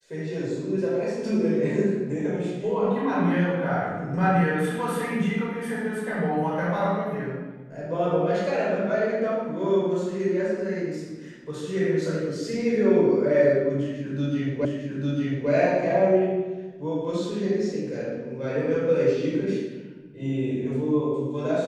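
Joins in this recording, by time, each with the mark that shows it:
14.65 s: repeat of the last 0.85 s

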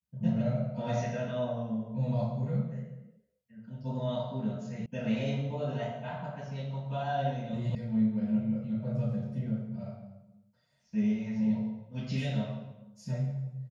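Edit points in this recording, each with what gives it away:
4.86 s: sound stops dead
7.75 s: sound stops dead

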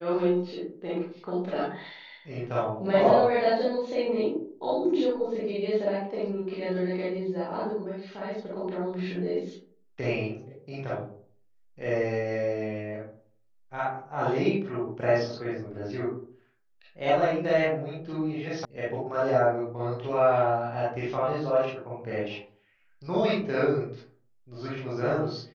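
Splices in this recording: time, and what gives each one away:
18.65 s: sound stops dead

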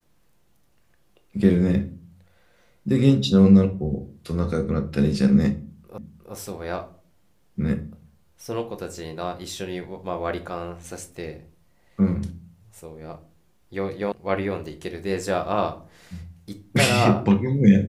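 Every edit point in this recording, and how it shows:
5.98 s: repeat of the last 0.36 s
14.12 s: sound stops dead

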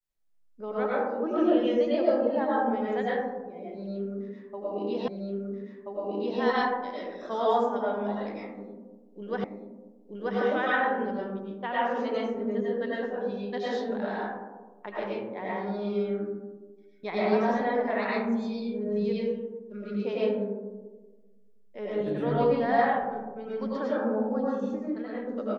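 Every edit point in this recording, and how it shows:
5.08 s: repeat of the last 1.33 s
9.44 s: repeat of the last 0.93 s

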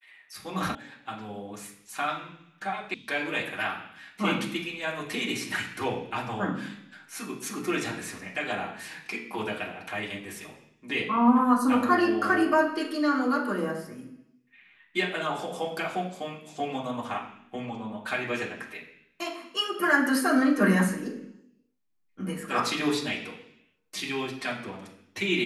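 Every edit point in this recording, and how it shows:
0.75 s: sound stops dead
2.94 s: sound stops dead

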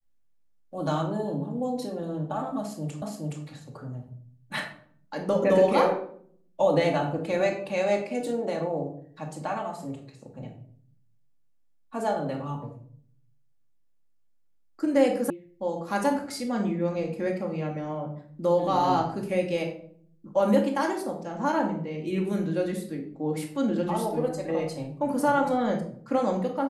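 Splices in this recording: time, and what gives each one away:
3.02 s: repeat of the last 0.42 s
15.30 s: sound stops dead

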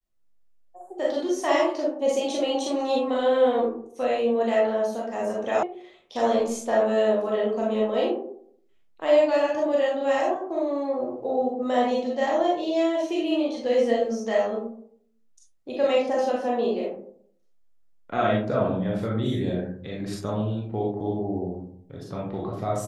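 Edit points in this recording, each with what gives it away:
5.63 s: sound stops dead

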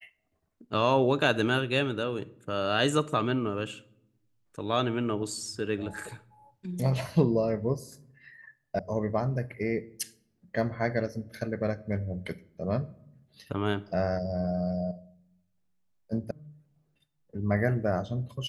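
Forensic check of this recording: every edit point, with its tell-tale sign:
8.79 s: sound stops dead
16.31 s: sound stops dead

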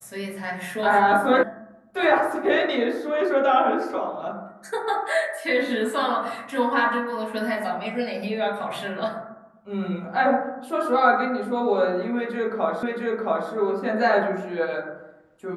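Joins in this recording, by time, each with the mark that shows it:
1.43 s: sound stops dead
12.83 s: repeat of the last 0.67 s

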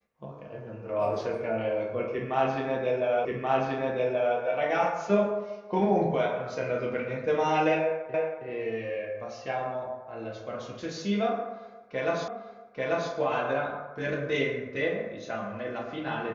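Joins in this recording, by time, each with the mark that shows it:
3.25 s: repeat of the last 1.13 s
8.14 s: repeat of the last 0.32 s
12.28 s: repeat of the last 0.84 s

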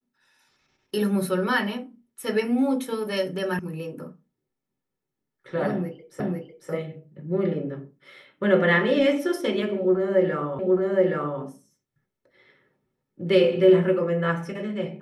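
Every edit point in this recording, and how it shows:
3.59 s: sound stops dead
6.20 s: repeat of the last 0.5 s
10.59 s: repeat of the last 0.82 s

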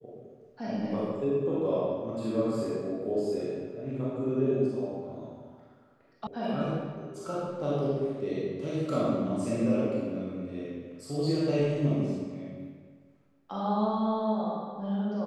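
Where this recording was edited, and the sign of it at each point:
6.27 s: sound stops dead

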